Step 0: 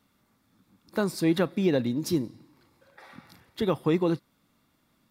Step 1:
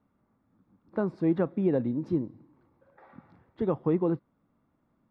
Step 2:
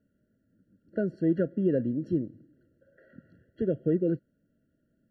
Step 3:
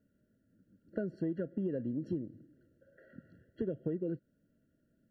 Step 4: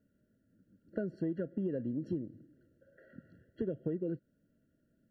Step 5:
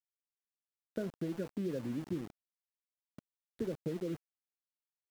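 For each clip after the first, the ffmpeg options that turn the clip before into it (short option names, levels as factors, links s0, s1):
-af "lowpass=1100,volume=0.841"
-af "afftfilt=real='re*eq(mod(floor(b*sr/1024/670),2),0)':imag='im*eq(mod(floor(b*sr/1024/670),2),0)':win_size=1024:overlap=0.75"
-af "acompressor=threshold=0.0316:ratio=10,volume=0.841"
-af anull
-af "flanger=delay=4.4:depth=7:regen=-86:speed=0.75:shape=sinusoidal,aeval=exprs='val(0)*gte(abs(val(0)),0.00376)':c=same,volume=1.41"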